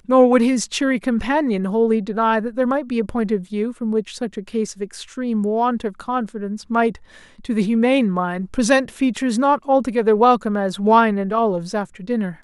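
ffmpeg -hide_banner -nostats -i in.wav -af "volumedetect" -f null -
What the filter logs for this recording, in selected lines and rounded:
mean_volume: -19.0 dB
max_volume: -1.6 dB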